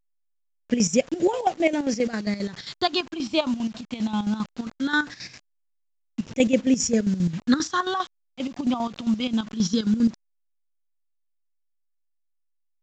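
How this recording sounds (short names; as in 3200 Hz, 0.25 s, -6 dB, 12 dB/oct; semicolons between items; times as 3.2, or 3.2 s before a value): phasing stages 6, 0.2 Hz, lowest notch 450–1200 Hz; a quantiser's noise floor 8-bit, dither none; chopped level 7.5 Hz, depth 65%, duty 55%; A-law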